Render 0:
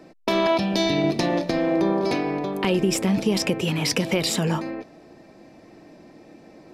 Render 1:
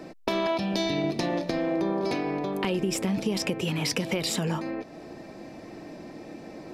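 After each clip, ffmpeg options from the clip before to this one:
ffmpeg -i in.wav -af "acompressor=threshold=-39dB:ratio=2,volume=5.5dB" out.wav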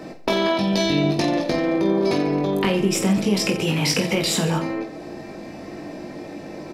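ffmpeg -i in.wav -af "aecho=1:1:20|48|87.2|142.1|218.9:0.631|0.398|0.251|0.158|0.1,volume=5dB" out.wav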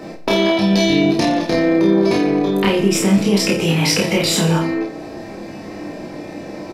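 ffmpeg -i in.wav -filter_complex "[0:a]asplit=2[link_01][link_02];[link_02]adelay=30,volume=-2dB[link_03];[link_01][link_03]amix=inputs=2:normalize=0,volume=2.5dB" out.wav

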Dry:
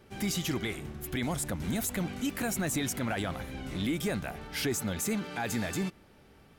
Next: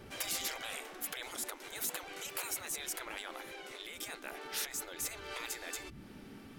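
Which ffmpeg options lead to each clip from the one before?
ffmpeg -i in.wav -af "asubboost=boost=8:cutoff=190,acompressor=threshold=-30dB:ratio=10,afftfilt=real='re*lt(hypot(re,im),0.0224)':imag='im*lt(hypot(re,im),0.0224)':win_size=1024:overlap=0.75,volume=5.5dB" out.wav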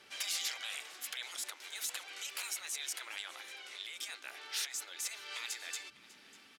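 ffmpeg -i in.wav -af "bandpass=frequency=4100:width_type=q:width=0.71:csg=0,aecho=1:1:597:0.1,volume=3.5dB" out.wav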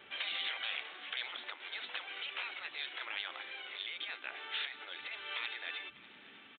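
ffmpeg -i in.wav -af "aresample=8000,aresample=44100,volume=4dB" out.wav

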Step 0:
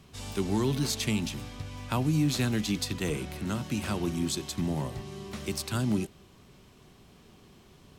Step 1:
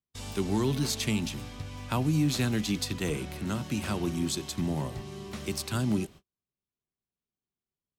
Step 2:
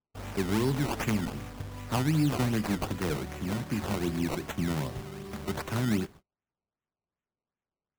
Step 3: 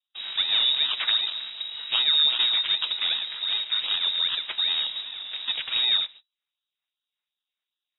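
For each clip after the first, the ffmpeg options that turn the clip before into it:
ffmpeg -i in.wav -af "agate=range=-42dB:threshold=-46dB:ratio=16:detection=peak" out.wav
ffmpeg -i in.wav -af "acrusher=samples=18:mix=1:aa=0.000001:lfo=1:lforange=18:lforate=2.6" out.wav
ffmpeg -i in.wav -af "lowpass=frequency=3300:width_type=q:width=0.5098,lowpass=frequency=3300:width_type=q:width=0.6013,lowpass=frequency=3300:width_type=q:width=0.9,lowpass=frequency=3300:width_type=q:width=2.563,afreqshift=-3900,volume=4.5dB" out.wav

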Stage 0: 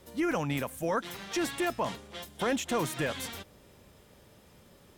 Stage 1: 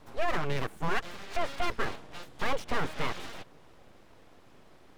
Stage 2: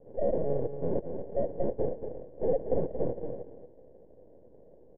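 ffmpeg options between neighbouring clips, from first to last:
ffmpeg -i in.wav -filter_complex "[0:a]aemphasis=mode=reproduction:type=75kf,acrossover=split=3800[link_01][link_02];[link_02]acompressor=threshold=-58dB:ratio=4:attack=1:release=60[link_03];[link_01][link_03]amix=inputs=2:normalize=0,aeval=exprs='abs(val(0))':channel_layout=same,volume=4dB" out.wav
ffmpeg -i in.wav -af "acrusher=samples=35:mix=1:aa=0.000001,lowpass=frequency=510:width_type=q:width=4.9,aecho=1:1:230:0.376,volume=-4dB" out.wav

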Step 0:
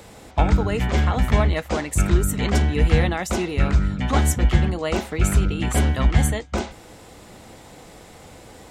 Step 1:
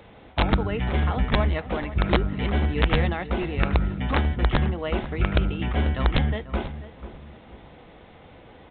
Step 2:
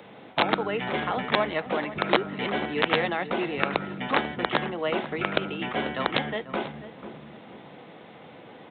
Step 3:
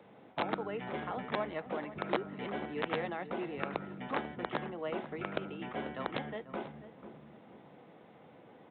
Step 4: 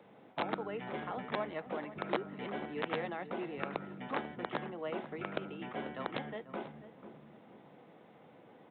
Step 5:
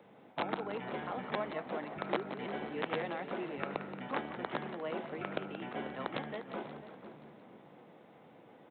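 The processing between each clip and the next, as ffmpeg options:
ffmpeg -i in.wav -filter_complex "[0:a]aresample=8000,aeval=exprs='(mod(2.51*val(0)+1,2)-1)/2.51':channel_layout=same,aresample=44100,asplit=2[link_01][link_02];[link_02]adelay=491,lowpass=frequency=1400:poles=1,volume=-13dB,asplit=2[link_03][link_04];[link_04]adelay=491,lowpass=frequency=1400:poles=1,volume=0.35,asplit=2[link_05][link_06];[link_06]adelay=491,lowpass=frequency=1400:poles=1,volume=0.35[link_07];[link_01][link_03][link_05][link_07]amix=inputs=4:normalize=0,volume=-4dB" out.wav
ffmpeg -i in.wav -filter_complex "[0:a]highpass=frequency=140:width=0.5412,highpass=frequency=140:width=1.3066,acrossover=split=310|1400[link_01][link_02][link_03];[link_01]acompressor=threshold=-40dB:ratio=6[link_04];[link_04][link_02][link_03]amix=inputs=3:normalize=0,volume=2.5dB" out.wav
ffmpeg -i in.wav -af "highshelf=frequency=2400:gain=-11.5,volume=-9dB" out.wav
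ffmpeg -i in.wav -af "highpass=93,volume=-1.5dB" out.wav
ffmpeg -i in.wav -filter_complex "[0:a]asplit=8[link_01][link_02][link_03][link_04][link_05][link_06][link_07][link_08];[link_02]adelay=176,afreqshift=45,volume=-11dB[link_09];[link_03]adelay=352,afreqshift=90,volume=-15.2dB[link_10];[link_04]adelay=528,afreqshift=135,volume=-19.3dB[link_11];[link_05]adelay=704,afreqshift=180,volume=-23.5dB[link_12];[link_06]adelay=880,afreqshift=225,volume=-27.6dB[link_13];[link_07]adelay=1056,afreqshift=270,volume=-31.8dB[link_14];[link_08]adelay=1232,afreqshift=315,volume=-35.9dB[link_15];[link_01][link_09][link_10][link_11][link_12][link_13][link_14][link_15]amix=inputs=8:normalize=0" out.wav

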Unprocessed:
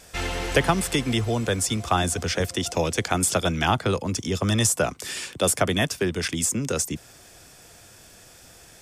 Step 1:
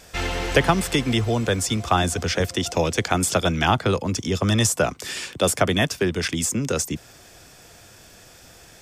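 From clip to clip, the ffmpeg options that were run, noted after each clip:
ffmpeg -i in.wav -af "equalizer=frequency=10000:width=1.3:gain=-5.5,volume=2.5dB" out.wav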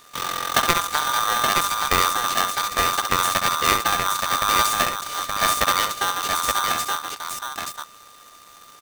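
ffmpeg -i in.wav -af "aeval=exprs='max(val(0),0)':channel_layout=same,aecho=1:1:66|873:0.422|0.631,aeval=exprs='val(0)*sgn(sin(2*PI*1200*n/s))':channel_layout=same" out.wav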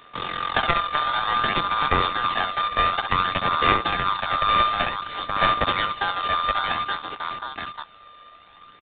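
ffmpeg -i in.wav -filter_complex "[0:a]aphaser=in_gain=1:out_gain=1:delay=1.7:decay=0.36:speed=0.55:type=sinusoidal,acrossover=split=190[link_01][link_02];[link_02]aeval=exprs='clip(val(0),-1,0.188)':channel_layout=same[link_03];[link_01][link_03]amix=inputs=2:normalize=0,aresample=8000,aresample=44100,volume=-1dB" out.wav

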